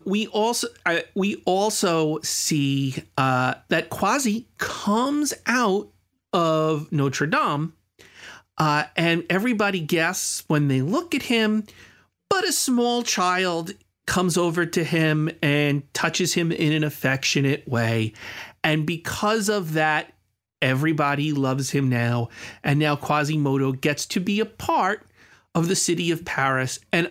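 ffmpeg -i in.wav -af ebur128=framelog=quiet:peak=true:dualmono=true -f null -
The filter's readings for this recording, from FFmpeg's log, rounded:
Integrated loudness:
  I:         -19.6 LUFS
  Threshold: -29.9 LUFS
Loudness range:
  LRA:         1.6 LU
  Threshold: -39.9 LUFS
  LRA low:   -20.6 LUFS
  LRA high:  -18.9 LUFS
True peak:
  Peak:       -6.7 dBFS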